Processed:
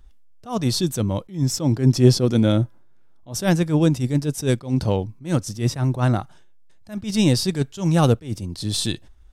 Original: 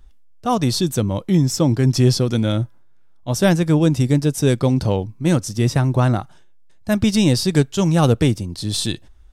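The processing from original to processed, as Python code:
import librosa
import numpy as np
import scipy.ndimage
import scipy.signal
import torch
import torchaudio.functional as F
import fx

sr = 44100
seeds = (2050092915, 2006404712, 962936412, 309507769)

y = fx.peak_eq(x, sr, hz=340.0, db=5.0, octaves=2.6, at=(1.75, 3.33))
y = fx.attack_slew(y, sr, db_per_s=190.0)
y = y * 10.0 ** (-1.5 / 20.0)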